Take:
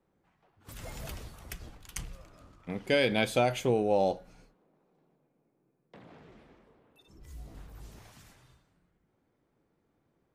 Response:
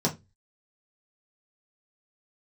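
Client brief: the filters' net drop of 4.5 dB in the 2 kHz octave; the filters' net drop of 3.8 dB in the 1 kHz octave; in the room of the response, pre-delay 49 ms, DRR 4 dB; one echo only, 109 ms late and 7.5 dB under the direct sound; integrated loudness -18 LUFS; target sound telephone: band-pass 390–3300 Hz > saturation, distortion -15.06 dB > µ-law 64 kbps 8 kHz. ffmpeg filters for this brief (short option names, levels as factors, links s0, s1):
-filter_complex "[0:a]equalizer=f=1000:t=o:g=-5,equalizer=f=2000:t=o:g=-3.5,aecho=1:1:109:0.422,asplit=2[s0][s1];[1:a]atrim=start_sample=2205,adelay=49[s2];[s1][s2]afir=irnorm=-1:irlink=0,volume=0.2[s3];[s0][s3]amix=inputs=2:normalize=0,highpass=390,lowpass=3300,asoftclip=threshold=0.0841,volume=4.22" -ar 8000 -c:a pcm_mulaw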